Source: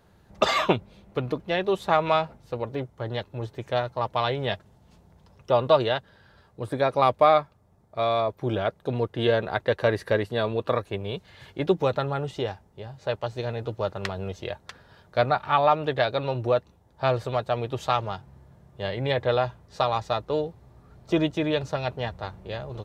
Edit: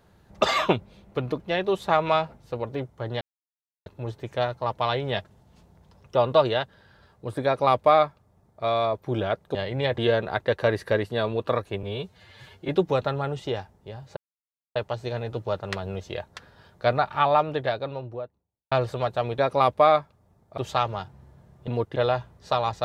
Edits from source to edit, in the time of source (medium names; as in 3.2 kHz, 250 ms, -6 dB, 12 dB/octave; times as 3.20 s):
3.21 s: insert silence 0.65 s
6.80–7.99 s: copy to 17.71 s
8.90–9.18 s: swap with 18.81–19.24 s
11.03–11.60 s: stretch 1.5×
13.08 s: insert silence 0.59 s
15.55–17.04 s: studio fade out